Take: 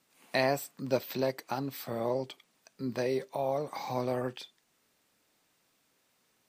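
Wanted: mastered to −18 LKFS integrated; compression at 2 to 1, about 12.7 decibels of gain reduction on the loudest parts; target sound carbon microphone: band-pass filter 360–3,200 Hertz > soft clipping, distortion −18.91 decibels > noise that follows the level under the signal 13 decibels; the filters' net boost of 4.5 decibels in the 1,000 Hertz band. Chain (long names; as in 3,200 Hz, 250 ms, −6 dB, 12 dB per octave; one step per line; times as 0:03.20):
parametric band 1,000 Hz +6.5 dB
downward compressor 2 to 1, threshold −44 dBFS
band-pass filter 360–3,200 Hz
soft clipping −30.5 dBFS
noise that follows the level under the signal 13 dB
level +26 dB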